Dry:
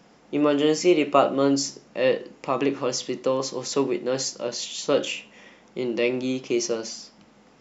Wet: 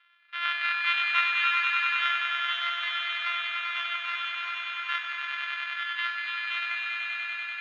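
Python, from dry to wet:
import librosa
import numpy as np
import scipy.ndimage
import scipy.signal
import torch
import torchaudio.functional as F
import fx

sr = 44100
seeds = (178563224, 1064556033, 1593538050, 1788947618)

p1 = np.r_[np.sort(x[:len(x) // 128 * 128].reshape(-1, 128), axis=1).ravel(), x[len(x) // 128 * 128:]]
p2 = scipy.signal.sosfilt(scipy.signal.ellip(3, 1.0, 80, [1300.0, 3400.0], 'bandpass', fs=sr, output='sos'), p1)
y = p2 + fx.echo_swell(p2, sr, ms=97, loudest=5, wet_db=-4, dry=0)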